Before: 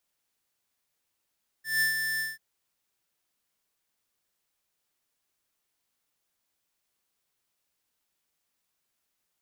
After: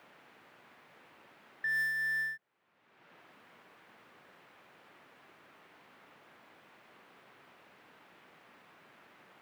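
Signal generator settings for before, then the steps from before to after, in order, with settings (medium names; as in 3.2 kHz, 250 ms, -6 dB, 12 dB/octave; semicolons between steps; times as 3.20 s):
ADSR square 1.77 kHz, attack 170 ms, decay 125 ms, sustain -6 dB, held 0.56 s, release 178 ms -24 dBFS
three bands compressed up and down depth 100%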